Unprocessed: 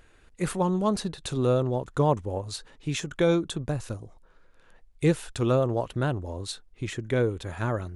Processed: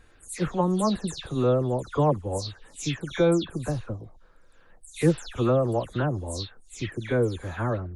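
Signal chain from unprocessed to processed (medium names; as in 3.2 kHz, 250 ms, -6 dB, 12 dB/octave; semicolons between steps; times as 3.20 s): delay that grows with frequency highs early, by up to 178 ms; peaking EQ 2.6 kHz -3 dB 0.63 oct; trim +1.5 dB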